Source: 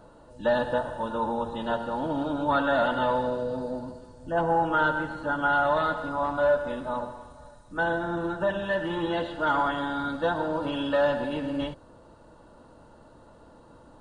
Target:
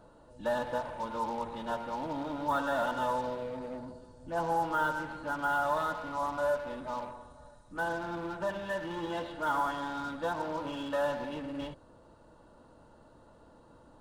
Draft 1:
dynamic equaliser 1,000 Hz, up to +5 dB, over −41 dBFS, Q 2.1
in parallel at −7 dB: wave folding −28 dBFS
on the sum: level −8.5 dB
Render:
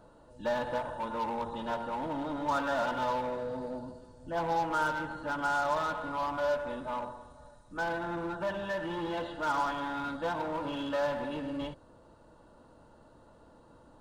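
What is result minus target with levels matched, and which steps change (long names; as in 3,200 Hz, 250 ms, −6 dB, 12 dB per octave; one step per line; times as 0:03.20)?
wave folding: distortion −18 dB
change: wave folding −35 dBFS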